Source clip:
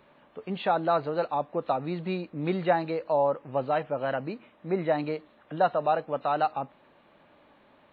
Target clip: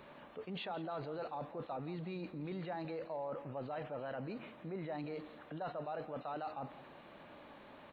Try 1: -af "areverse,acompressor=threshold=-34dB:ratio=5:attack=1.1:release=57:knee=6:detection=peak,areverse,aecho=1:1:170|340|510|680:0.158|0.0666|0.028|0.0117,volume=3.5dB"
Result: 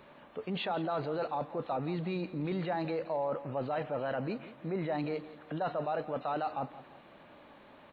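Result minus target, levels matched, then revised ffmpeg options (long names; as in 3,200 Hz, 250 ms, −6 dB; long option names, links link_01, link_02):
downward compressor: peak gain reduction −8.5 dB
-af "areverse,acompressor=threshold=-44.5dB:ratio=5:attack=1.1:release=57:knee=6:detection=peak,areverse,aecho=1:1:170|340|510|680:0.158|0.0666|0.028|0.0117,volume=3.5dB"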